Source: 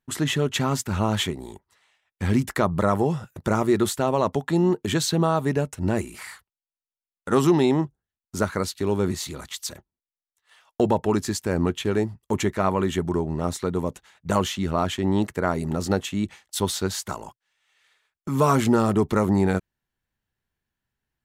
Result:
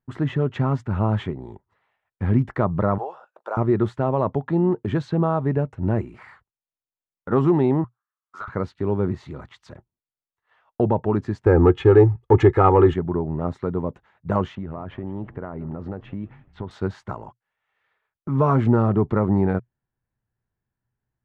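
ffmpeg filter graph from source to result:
ffmpeg -i in.wav -filter_complex "[0:a]asettb=1/sr,asplit=3[link_01][link_02][link_03];[link_01]atrim=end=2.984[link_04];[link_02]atrim=start=2.98:end=3.57,asetpts=PTS-STARTPTS,afade=type=in:duration=0.004:curve=qsin,afade=type=out:start_time=0.586:duration=0.004:curve=qsin,highpass=frequency=570:width=0.5412,highpass=frequency=570:width=1.3066,equalizer=frequency=2000:width_type=o:width=0.31:gain=-14[link_05];[link_03]atrim=start=3.566[link_06];[link_04][link_05]acrossfade=duration=0.004:curve1=hsin:curve2=qsin[link_07];[link_07][link_06]acrossfade=duration=0.004:curve1=qsin:curve2=hsin,asettb=1/sr,asplit=3[link_08][link_09][link_10];[link_08]atrim=end=7.844[link_11];[link_09]atrim=start=7.84:end=8.48,asetpts=PTS-STARTPTS,afade=type=in:duration=0.004:curve=qsin,afade=type=out:start_time=0.636:duration=0.004:curve=qsin,highpass=frequency=1200:width_type=q:width=7.8,acompressor=threshold=-22dB:ratio=6:attack=3.2:release=140:knee=1:detection=peak,asoftclip=type=hard:threshold=-24.5dB[link_12];[link_10]atrim=start=8.476[link_13];[link_11][link_12]acrossfade=duration=0.004:curve1=hsin:curve2=qsin[link_14];[link_14][link_13]acrossfade=duration=0.004:curve1=qsin:curve2=hsin,asettb=1/sr,asplit=3[link_15][link_16][link_17];[link_15]atrim=end=11.464[link_18];[link_16]atrim=start=11.46:end=12.94,asetpts=PTS-STARTPTS,afade=type=in:duration=0.004:curve=qsin,afade=type=out:start_time=1.476:duration=0.004:curve=qsin,aecho=1:1:2.4:0.88,atrim=end_sample=65268,acontrast=84[link_19];[link_17]atrim=start=12.936[link_20];[link_18][link_19]acrossfade=duration=0.004:curve1=hsin:curve2=qsin[link_21];[link_21][link_20]acrossfade=duration=0.004:curve1=qsin:curve2=hsin,asettb=1/sr,asplit=3[link_22][link_23][link_24];[link_22]atrim=end=14.554[link_25];[link_23]atrim=start=14.55:end=16.71,asetpts=PTS-STARTPTS,afade=type=in:duration=0.004:curve=qsin,afade=type=out:start_time=2.156:duration=0.004:curve=qsin,lowpass=2700,acompressor=threshold=-27dB:ratio=10:attack=3.2:release=140:knee=1:detection=peak,asplit=5[link_26][link_27][link_28][link_29][link_30];[link_27]adelay=171,afreqshift=-66,volume=-21dB[link_31];[link_28]adelay=342,afreqshift=-132,volume=-26.2dB[link_32];[link_29]adelay=513,afreqshift=-198,volume=-31.4dB[link_33];[link_30]adelay=684,afreqshift=-264,volume=-36.6dB[link_34];[link_26][link_31][link_32][link_33][link_34]amix=inputs=5:normalize=0,atrim=end_sample=95256[link_35];[link_24]atrim=start=16.706[link_36];[link_25][link_35]acrossfade=duration=0.004:curve1=hsin:curve2=qsin[link_37];[link_37][link_36]acrossfade=duration=0.004:curve1=qsin:curve2=hsin,lowpass=1400,equalizer=frequency=120:width=4:gain=9.5" out.wav

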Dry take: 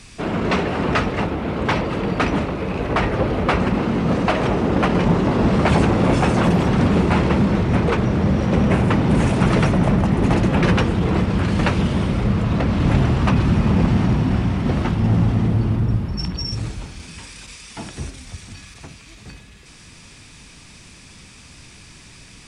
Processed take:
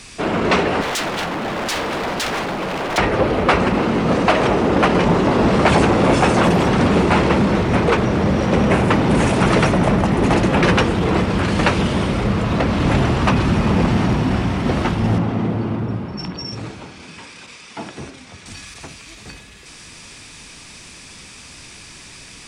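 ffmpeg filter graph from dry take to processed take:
ffmpeg -i in.wav -filter_complex "[0:a]asettb=1/sr,asplit=3[link_01][link_02][link_03];[link_01]atrim=end=0.814[link_04];[link_02]atrim=start=0.81:end=2.98,asetpts=PTS-STARTPTS,afade=type=in:duration=0.004:curve=qsin,afade=type=out:start_time=2.166:duration=0.004:curve=qsin,highpass=frequency=160:width_type=q:width=1.6,aeval=exprs='0.0794*(abs(mod(val(0)/0.0794+3,4)-2)-1)':channel_layout=same[link_05];[link_03]atrim=start=2.976[link_06];[link_04][link_05]acrossfade=duration=0.004:curve1=hsin:curve2=qsin[link_07];[link_07][link_06]acrossfade=duration=0.004:curve1=qsin:curve2=hsin,asettb=1/sr,asplit=3[link_08][link_09][link_10];[link_08]atrim=end=15.184[link_11];[link_09]atrim=start=15.18:end=18.46,asetpts=PTS-STARTPTS,afade=type=in:duration=0.004:curve=qsin,afade=type=out:start_time=3.276:duration=0.004:curve=qsin,highpass=130,aemphasis=mode=reproduction:type=75kf,bandreject=frequency=1800:width=28[link_12];[link_10]atrim=start=18.456[link_13];[link_11][link_12]acrossfade=duration=0.004:curve1=hsin:curve2=qsin[link_14];[link_14][link_13]acrossfade=duration=0.004:curve1=qsin:curve2=hsin,bass=frequency=250:gain=-7,treble=frequency=4000:gain=1,acontrast=35" out.wav

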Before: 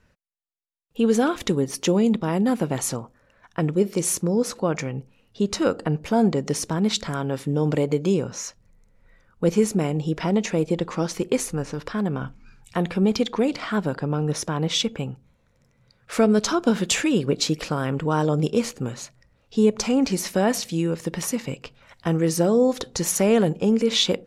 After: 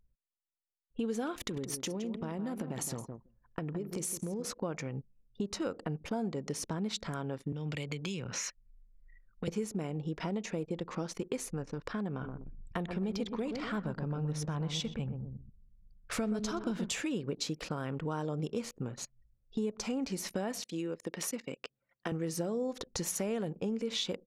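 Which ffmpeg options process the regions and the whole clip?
ffmpeg -i in.wav -filter_complex "[0:a]asettb=1/sr,asplit=3[link_01][link_02][link_03];[link_01]atrim=end=1.344[link_04];[link_02]atrim=start=1.34:end=4.45,asetpts=PTS-STARTPTS,afade=type=in:duration=0.004:curve=qsin,afade=type=out:start_time=3.106:duration=0.004:curve=qsin,highshelf=frequency=9900:gain=11,acompressor=threshold=-23dB:ratio=10:attack=3.2:release=140:knee=1:detection=peak,asplit=2[link_05][link_06];[link_06]adelay=165,lowpass=frequency=4600:poles=1,volume=-9dB,asplit=2[link_07][link_08];[link_08]adelay=165,lowpass=frequency=4600:poles=1,volume=0.26,asplit=2[link_09][link_10];[link_10]adelay=165,lowpass=frequency=4600:poles=1,volume=0.26[link_11];[link_05][link_07][link_09][link_11]amix=inputs=4:normalize=0,atrim=end_sample=137151[link_12];[link_03]atrim=start=4.446[link_13];[link_04][link_12]acrossfade=duration=0.004:curve1=hsin:curve2=qsin[link_14];[link_14][link_13]acrossfade=duration=0.004:curve1=qsin:curve2=hsin,asettb=1/sr,asplit=3[link_15][link_16][link_17];[link_15]atrim=end=7.524[link_18];[link_16]atrim=start=7.52:end=9.48,asetpts=PTS-STARTPTS,afade=type=in:duration=0.004:curve=qsin,afade=type=out:start_time=1.956:duration=0.004:curve=qsin,acrossover=split=150|3000[link_19][link_20][link_21];[link_20]acompressor=threshold=-34dB:ratio=5:attack=3.2:release=140:knee=2.83:detection=peak[link_22];[link_19][link_22][link_21]amix=inputs=3:normalize=0,equalizer=frequency=2300:width_type=o:width=1.6:gain=12.5[link_23];[link_17]atrim=start=9.476[link_24];[link_18][link_23]acrossfade=duration=0.004:curve1=hsin:curve2=qsin[link_25];[link_25][link_24]acrossfade=duration=0.004:curve1=qsin:curve2=hsin,asettb=1/sr,asplit=3[link_26][link_27][link_28];[link_26]atrim=end=12.114[link_29];[link_27]atrim=start=12.11:end=16.9,asetpts=PTS-STARTPTS,afade=type=in:duration=0.004:curve=qsin,afade=type=out:start_time=4.786:duration=0.004:curve=qsin,asubboost=boost=3.5:cutoff=170,asplit=2[link_30][link_31];[link_31]adelay=125,lowpass=frequency=910:poles=1,volume=-6dB,asplit=2[link_32][link_33];[link_33]adelay=125,lowpass=frequency=910:poles=1,volume=0.42,asplit=2[link_34][link_35];[link_35]adelay=125,lowpass=frequency=910:poles=1,volume=0.42,asplit=2[link_36][link_37];[link_37]adelay=125,lowpass=frequency=910:poles=1,volume=0.42,asplit=2[link_38][link_39];[link_39]adelay=125,lowpass=frequency=910:poles=1,volume=0.42[link_40];[link_30][link_32][link_34][link_36][link_38][link_40]amix=inputs=6:normalize=0,atrim=end_sample=211239[link_41];[link_28]atrim=start=16.896[link_42];[link_29][link_41]acrossfade=duration=0.004:curve1=hsin:curve2=qsin[link_43];[link_43][link_42]acrossfade=duration=0.004:curve1=qsin:curve2=hsin,asettb=1/sr,asplit=3[link_44][link_45][link_46];[link_44]atrim=end=20.634[link_47];[link_45]atrim=start=20.63:end=22.12,asetpts=PTS-STARTPTS,afade=type=in:duration=0.004:curve=qsin,afade=type=out:start_time=1.486:duration=0.004:curve=qsin,highpass=270,equalizer=frequency=910:width_type=o:width=0.63:gain=-4[link_48];[link_46]atrim=start=22.116[link_49];[link_47][link_48]acrossfade=duration=0.004:curve1=hsin:curve2=qsin[link_50];[link_50][link_49]acrossfade=duration=0.004:curve1=qsin:curve2=hsin,anlmdn=1.58,acompressor=threshold=-37dB:ratio=3" out.wav

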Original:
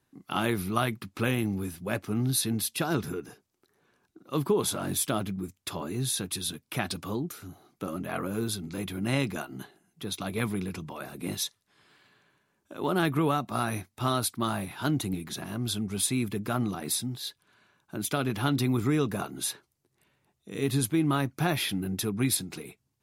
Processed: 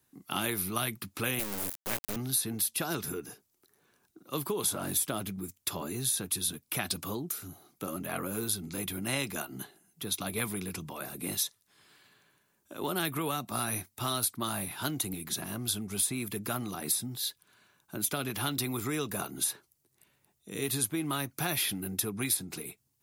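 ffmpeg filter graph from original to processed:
ffmpeg -i in.wav -filter_complex "[0:a]asettb=1/sr,asplit=3[link_01][link_02][link_03];[link_01]atrim=end=1.394[link_04];[link_02]atrim=start=1.39:end=2.16,asetpts=PTS-STARTPTS,afade=type=in:duration=0.004:curve=qsin,afade=type=out:start_time=0.766:duration=0.004:curve=qsin,lowshelf=frequency=66:gain=-11.5,acrusher=bits=3:dc=4:mix=0:aa=0.000001[link_05];[link_03]atrim=start=2.156[link_06];[link_04][link_05]acrossfade=duration=0.004:curve1=hsin:curve2=qsin[link_07];[link_07][link_06]acrossfade=duration=0.004:curve1=qsin:curve2=hsin,aemphasis=mode=production:type=50kf,acrossover=split=410|1900[link_08][link_09][link_10];[link_08]acompressor=threshold=-34dB:ratio=4[link_11];[link_09]acompressor=threshold=-32dB:ratio=4[link_12];[link_10]acompressor=threshold=-26dB:ratio=4[link_13];[link_11][link_12][link_13]amix=inputs=3:normalize=0,volume=-2dB" out.wav

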